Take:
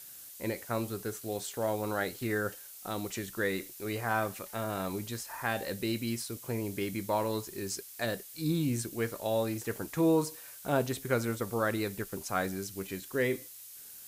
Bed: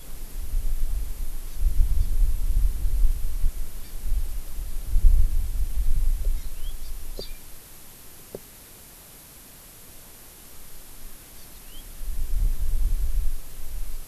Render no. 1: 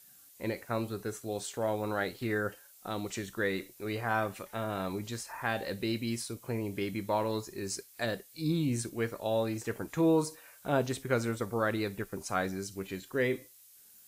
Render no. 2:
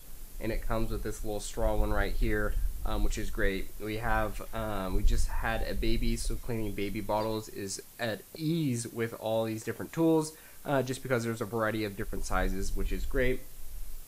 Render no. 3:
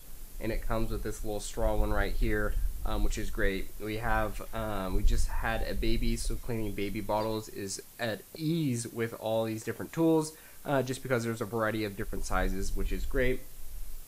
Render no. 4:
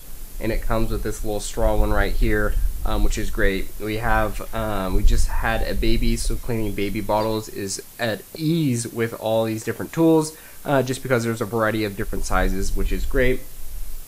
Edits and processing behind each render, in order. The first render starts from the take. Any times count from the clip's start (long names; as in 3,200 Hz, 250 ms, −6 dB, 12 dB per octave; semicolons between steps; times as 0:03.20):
noise reduction from a noise print 9 dB
mix in bed −9.5 dB
no processing that can be heard
level +9.5 dB